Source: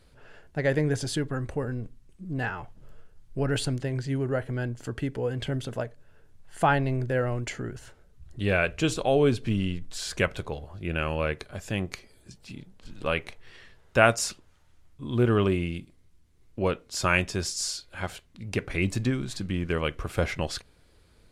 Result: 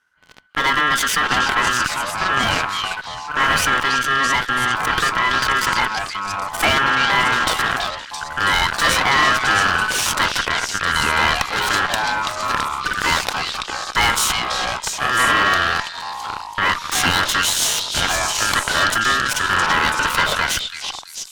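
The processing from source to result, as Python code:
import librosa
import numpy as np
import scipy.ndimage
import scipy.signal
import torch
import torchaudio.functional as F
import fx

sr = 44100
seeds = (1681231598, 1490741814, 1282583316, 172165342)

p1 = fx.leveller(x, sr, passes=5)
p2 = fx.over_compress(p1, sr, threshold_db=-22.0, ratio=-1.0)
p3 = p1 + F.gain(torch.from_numpy(p2), -2.5).numpy()
p4 = p3 * np.sin(2.0 * np.pi * 1500.0 * np.arange(len(p3)) / sr)
p5 = fx.echo_pitch(p4, sr, ms=494, semitones=-4, count=2, db_per_echo=-6.0)
p6 = p5 + fx.echo_stepped(p5, sr, ms=332, hz=3600.0, octaves=0.7, feedback_pct=70, wet_db=-1, dry=0)
p7 = fx.cheby_harmonics(p6, sr, harmonics=(4,), levels_db=(-13,), full_scale_db=3.0)
y = F.gain(torch.from_numpy(p7), -6.0).numpy()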